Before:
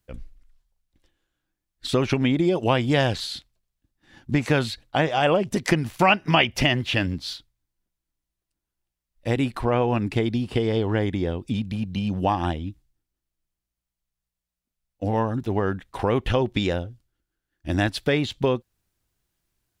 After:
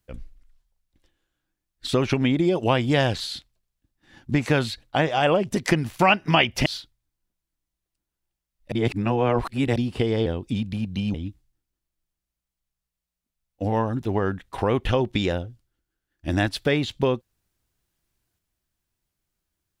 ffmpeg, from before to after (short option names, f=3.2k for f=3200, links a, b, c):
-filter_complex "[0:a]asplit=6[a][b][c][d][e][f];[a]atrim=end=6.662[g];[b]atrim=start=7.218:end=9.282[h];[c]atrim=start=9.278:end=10.322,asetpts=PTS-STARTPTS,areverse[i];[d]atrim=start=10.318:end=10.822[j];[e]atrim=start=11.248:end=12.132[k];[f]atrim=start=12.548[l];[g][h]acrossfade=d=0.004:c1=hsin:c2=hsin[m];[m][i]acrossfade=d=0.004:c1=hsin:c2=hsin[n];[n][j]acrossfade=d=0.004:c1=hsin:c2=hsin[o];[o][k]acrossfade=d=0.004:c1=hsin:c2=hsin[p];[p][l]acrossfade=d=0.004:c1=hsin:c2=hsin"